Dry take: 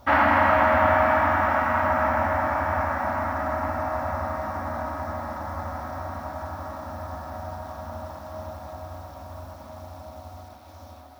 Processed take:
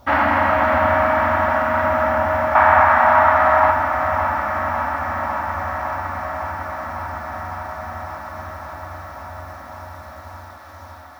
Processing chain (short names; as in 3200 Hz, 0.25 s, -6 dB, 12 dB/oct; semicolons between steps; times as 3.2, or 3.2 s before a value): 2.55–3.71 band shelf 1600 Hz +12 dB 2.7 oct; thinning echo 0.555 s, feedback 82%, high-pass 160 Hz, level -9 dB; gain +2 dB